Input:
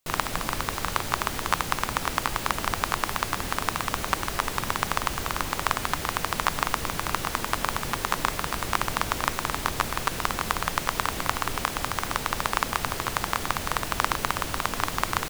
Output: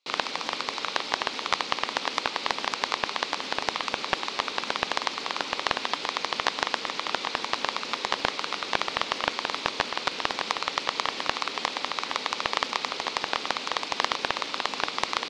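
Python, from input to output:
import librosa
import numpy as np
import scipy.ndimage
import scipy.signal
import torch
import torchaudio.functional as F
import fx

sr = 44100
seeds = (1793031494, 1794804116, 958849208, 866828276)

y = fx.cabinet(x, sr, low_hz=260.0, low_slope=24, high_hz=5400.0, hz=(340.0, 670.0, 1700.0, 2400.0, 4100.0), db=(-5, -7, -8, 5, 9))
y = fx.doppler_dist(y, sr, depth_ms=0.31)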